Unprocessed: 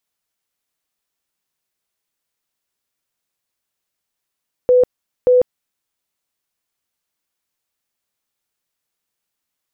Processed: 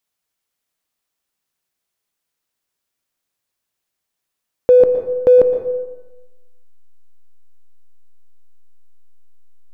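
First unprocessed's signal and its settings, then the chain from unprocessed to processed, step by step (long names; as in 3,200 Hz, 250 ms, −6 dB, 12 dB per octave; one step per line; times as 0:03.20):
tone bursts 499 Hz, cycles 73, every 0.58 s, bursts 2, −8 dBFS
in parallel at −7 dB: slack as between gear wheels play −23 dBFS
on the sum: dense smooth reverb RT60 1.1 s, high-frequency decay 0.5×, pre-delay 105 ms, DRR 7 dB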